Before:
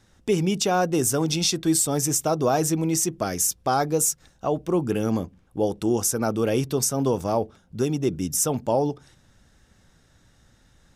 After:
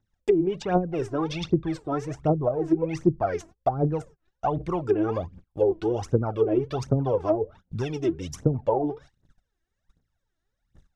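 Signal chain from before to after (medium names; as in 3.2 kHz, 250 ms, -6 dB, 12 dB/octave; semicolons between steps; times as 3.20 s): dynamic bell 220 Hz, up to -8 dB, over -40 dBFS, Q 2.2; phaser 1.3 Hz, delay 3.2 ms, feedback 78%; low-pass that closes with the level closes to 370 Hz, closed at -14 dBFS; gate -43 dBFS, range -24 dB; treble shelf 4.2 kHz -7.5 dB; trim -1 dB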